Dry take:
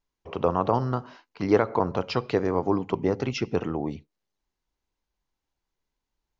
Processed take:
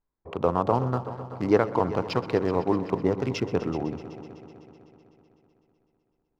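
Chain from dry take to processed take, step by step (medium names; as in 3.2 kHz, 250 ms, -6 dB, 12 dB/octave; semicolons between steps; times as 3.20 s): local Wiener filter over 15 samples; multi-head delay 126 ms, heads all three, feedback 59%, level -18 dB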